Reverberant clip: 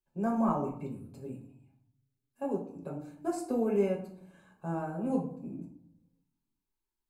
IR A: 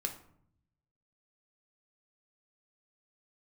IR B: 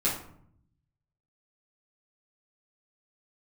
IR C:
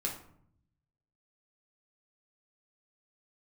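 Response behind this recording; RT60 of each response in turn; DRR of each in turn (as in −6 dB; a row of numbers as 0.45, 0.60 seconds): C; 0.65, 0.65, 0.65 seconds; 3.5, −9.0, −2.0 decibels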